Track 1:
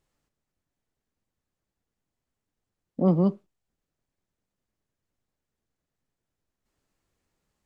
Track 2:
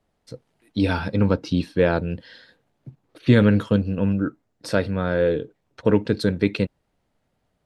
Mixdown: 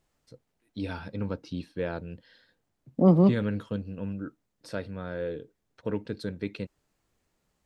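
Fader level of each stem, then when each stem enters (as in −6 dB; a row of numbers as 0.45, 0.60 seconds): +2.5, −13.0 decibels; 0.00, 0.00 seconds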